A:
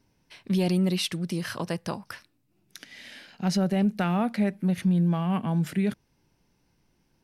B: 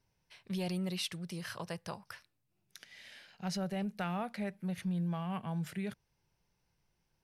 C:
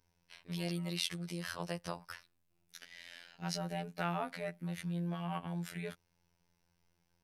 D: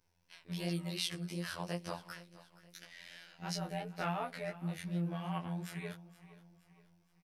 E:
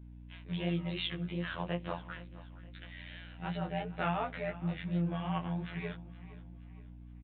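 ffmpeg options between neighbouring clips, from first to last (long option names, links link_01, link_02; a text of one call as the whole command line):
ffmpeg -i in.wav -af "equalizer=frequency=270:width_type=o:width=0.77:gain=-12,volume=-8dB" out.wav
ffmpeg -i in.wav -filter_complex "[0:a]acrossover=split=230|4000[link_01][link_02][link_03];[link_01]acompressor=threshold=-47dB:ratio=10[link_04];[link_04][link_02][link_03]amix=inputs=3:normalize=0,afftfilt=real='hypot(re,im)*cos(PI*b)':imag='0':win_size=2048:overlap=0.75,volume=4.5dB" out.wav
ffmpeg -i in.wav -af "flanger=delay=17:depth=5.1:speed=2.8,aecho=1:1:470|940|1410|1880:0.126|0.0541|0.0233|0.01,volume=2.5dB" out.wav
ffmpeg -i in.wav -af "aeval=exprs='val(0)+0.00251*(sin(2*PI*60*n/s)+sin(2*PI*2*60*n/s)/2+sin(2*PI*3*60*n/s)/3+sin(2*PI*4*60*n/s)/4+sin(2*PI*5*60*n/s)/5)':channel_layout=same,aresample=8000,aresample=44100,volume=3.5dB" out.wav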